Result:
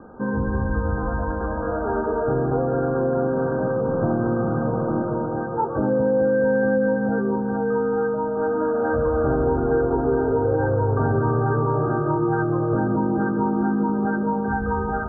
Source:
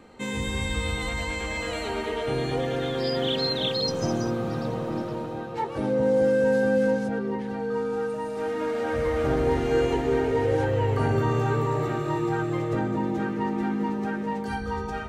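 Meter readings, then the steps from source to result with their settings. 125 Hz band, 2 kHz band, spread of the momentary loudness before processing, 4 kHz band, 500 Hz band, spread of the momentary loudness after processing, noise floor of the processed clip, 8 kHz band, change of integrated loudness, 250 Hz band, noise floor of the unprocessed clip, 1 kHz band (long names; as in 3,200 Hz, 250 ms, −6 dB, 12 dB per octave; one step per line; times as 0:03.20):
+4.5 dB, +2.0 dB, 8 LU, below −40 dB, +4.0 dB, 5 LU, −26 dBFS, can't be measured, +4.0 dB, +5.5 dB, −33 dBFS, +5.0 dB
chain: Chebyshev low-pass filter 1,600 Hz, order 10
downward compressor 3 to 1, threshold −26 dBFS, peak gain reduction 6 dB
level +8 dB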